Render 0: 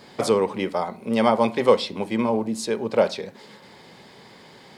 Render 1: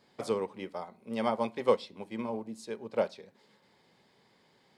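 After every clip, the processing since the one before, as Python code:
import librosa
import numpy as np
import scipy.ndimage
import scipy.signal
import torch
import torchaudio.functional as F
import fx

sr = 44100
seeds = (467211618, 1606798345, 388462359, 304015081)

y = fx.upward_expand(x, sr, threshold_db=-32.0, expansion=1.5)
y = y * librosa.db_to_amplitude(-8.0)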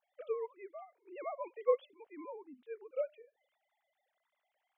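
y = fx.sine_speech(x, sr)
y = y * librosa.db_to_amplitude(-6.5)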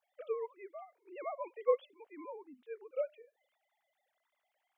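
y = fx.highpass(x, sr, hz=240.0, slope=6)
y = y * librosa.db_to_amplitude(1.0)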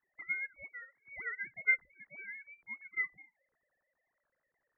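y = fx.freq_invert(x, sr, carrier_hz=2600)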